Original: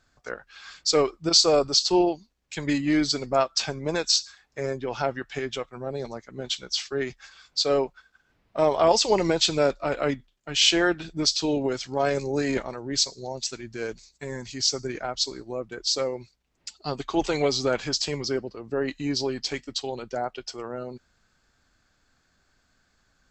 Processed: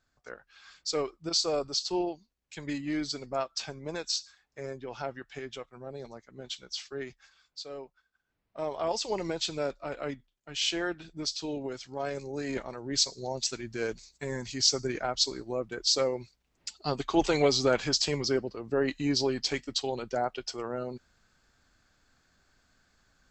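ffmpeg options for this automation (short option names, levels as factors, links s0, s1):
-af "volume=2.99,afade=t=out:st=7.02:d=0.68:silence=0.316228,afade=t=in:st=7.7:d=1.52:silence=0.334965,afade=t=in:st=12.37:d=0.96:silence=0.334965"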